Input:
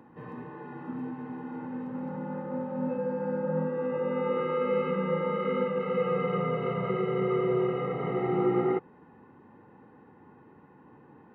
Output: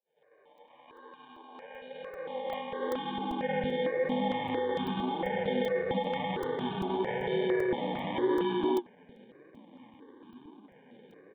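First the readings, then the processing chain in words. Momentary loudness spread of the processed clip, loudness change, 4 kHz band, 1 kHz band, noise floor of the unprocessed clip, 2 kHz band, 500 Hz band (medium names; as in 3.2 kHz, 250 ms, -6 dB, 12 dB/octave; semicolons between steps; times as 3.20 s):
14 LU, -1.5 dB, no reading, 0.0 dB, -56 dBFS, +1.5 dB, -3.0 dB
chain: fade-in on the opening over 3.32 s; reverse echo 100 ms -11.5 dB; sample-and-hold 33×; flange 0.94 Hz, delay 4.6 ms, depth 7 ms, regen +49%; resampled via 8 kHz; peak limiter -26.5 dBFS, peak gain reduction 9.5 dB; high-pass sweep 570 Hz -> 260 Hz, 2.17–3.55 s; crackling interface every 0.39 s, samples 128, zero, from 0.58 s; stepped phaser 4.4 Hz 300–2000 Hz; trim +5.5 dB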